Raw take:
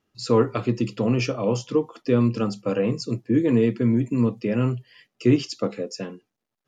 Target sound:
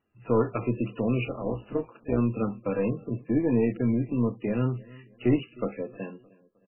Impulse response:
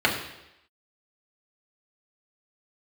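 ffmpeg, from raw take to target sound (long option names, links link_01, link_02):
-filter_complex "[0:a]asplit=2[link_01][link_02];[link_02]aeval=exprs='clip(val(0),-1,0.0447)':channel_layout=same,volume=-5dB[link_03];[link_01][link_03]amix=inputs=2:normalize=0,asettb=1/sr,asplit=3[link_04][link_05][link_06];[link_04]atrim=end=1.264[link_07];[link_05]atrim=start=1.26:end=2.18,asetpts=PTS-STARTPTS,afade=type=in:duration=0.004:curve=qsin,afade=type=out:start_time=0.916:duration=0.004:curve=qsin,tremolo=f=180:d=0.71[link_08];[link_06]atrim=start=2.176[link_09];[link_07][link_08]acrossfade=duration=0.004:curve1=hsin:curve2=qsin[link_10];[link_10][link_09]acrossfade=duration=0.004:curve1=qsin:curve2=hsin,asplit=2[link_11][link_12];[link_12]adelay=309,lowpass=frequency=3100:poles=1,volume=-22.5dB,asplit=2[link_13][link_14];[link_14]adelay=309,lowpass=frequency=3100:poles=1,volume=0.41,asplit=2[link_15][link_16];[link_16]adelay=309,lowpass=frequency=3100:poles=1,volume=0.41[link_17];[link_11][link_13][link_15][link_17]amix=inputs=4:normalize=0,volume=-7dB" -ar 11025 -c:a libmp3lame -b:a 8k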